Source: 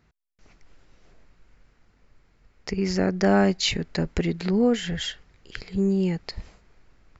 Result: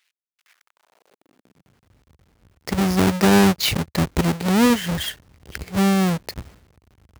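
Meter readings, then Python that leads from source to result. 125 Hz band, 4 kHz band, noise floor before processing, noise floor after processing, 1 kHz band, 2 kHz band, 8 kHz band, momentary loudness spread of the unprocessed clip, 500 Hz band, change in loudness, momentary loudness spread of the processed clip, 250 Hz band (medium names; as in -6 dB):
+6.0 dB, +4.5 dB, -64 dBFS, under -85 dBFS, +8.0 dB, +6.0 dB, no reading, 19 LU, +2.0 dB, +5.0 dB, 20 LU, +5.0 dB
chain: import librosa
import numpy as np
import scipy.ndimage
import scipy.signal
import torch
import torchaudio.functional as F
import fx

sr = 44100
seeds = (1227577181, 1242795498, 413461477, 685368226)

y = fx.halfwave_hold(x, sr)
y = fx.filter_sweep_highpass(y, sr, from_hz=2400.0, to_hz=75.0, start_s=0.36, end_s=1.94, q=1.7)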